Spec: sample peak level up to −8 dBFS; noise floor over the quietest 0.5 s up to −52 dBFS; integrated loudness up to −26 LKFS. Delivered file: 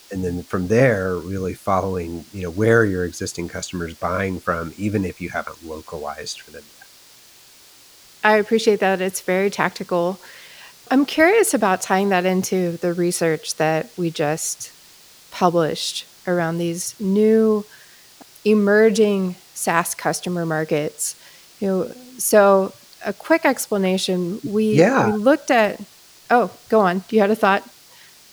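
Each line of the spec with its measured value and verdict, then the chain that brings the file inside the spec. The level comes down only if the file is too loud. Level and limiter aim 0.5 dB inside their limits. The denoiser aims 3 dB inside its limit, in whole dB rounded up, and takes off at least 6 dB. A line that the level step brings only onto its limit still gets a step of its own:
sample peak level −2.0 dBFS: out of spec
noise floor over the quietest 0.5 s −48 dBFS: out of spec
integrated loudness −19.5 LKFS: out of spec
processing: level −7 dB

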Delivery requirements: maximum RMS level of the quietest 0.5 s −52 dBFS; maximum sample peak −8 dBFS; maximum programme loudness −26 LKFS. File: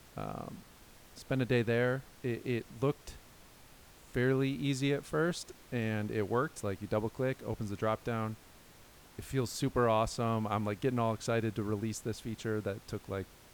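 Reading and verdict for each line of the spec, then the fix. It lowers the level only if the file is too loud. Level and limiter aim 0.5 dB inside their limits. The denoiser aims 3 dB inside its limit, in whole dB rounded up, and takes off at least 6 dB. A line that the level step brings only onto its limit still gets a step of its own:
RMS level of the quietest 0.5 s −57 dBFS: in spec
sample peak −17.0 dBFS: in spec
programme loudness −34.5 LKFS: in spec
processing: no processing needed

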